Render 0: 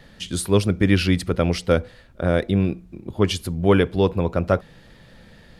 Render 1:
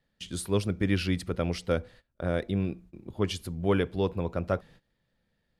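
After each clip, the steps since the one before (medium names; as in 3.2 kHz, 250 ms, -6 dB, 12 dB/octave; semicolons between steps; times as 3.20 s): gate -41 dBFS, range -19 dB; trim -9 dB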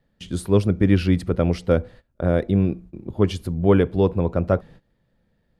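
tilt shelf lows +5.5 dB, about 1.4 kHz; trim +4.5 dB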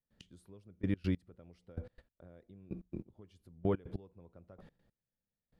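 compression, threshold -24 dBFS, peak gain reduction 12.5 dB; trance gate ".x......x" 144 bpm -24 dB; trim -4.5 dB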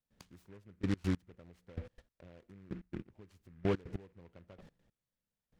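delay time shaken by noise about 1.5 kHz, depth 0.076 ms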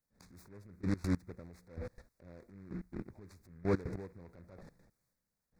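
Butterworth band-stop 3 kHz, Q 1.8; transient shaper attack -9 dB, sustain +6 dB; trim +3.5 dB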